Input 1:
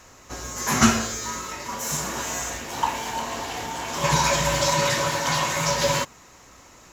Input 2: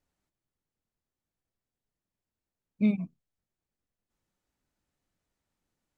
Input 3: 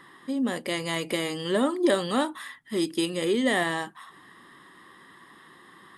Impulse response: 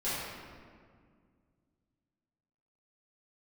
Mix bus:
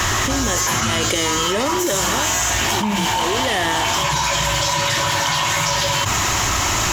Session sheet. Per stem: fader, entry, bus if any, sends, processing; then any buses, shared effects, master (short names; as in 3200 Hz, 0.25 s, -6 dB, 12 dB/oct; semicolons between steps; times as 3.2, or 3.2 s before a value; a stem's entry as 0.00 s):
-4.5 dB, 0.00 s, no send, bell 490 Hz -15 dB 0.29 oct
+1.5 dB, 0.00 s, no send, dry
-0.5 dB, 0.00 s, no send, random-step tremolo, depth 70%; auto duck -14 dB, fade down 1.25 s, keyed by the second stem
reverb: off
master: thirty-one-band EQ 100 Hz +8 dB, 160 Hz -5 dB, 250 Hz -9 dB, 3150 Hz +6 dB; fast leveller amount 100%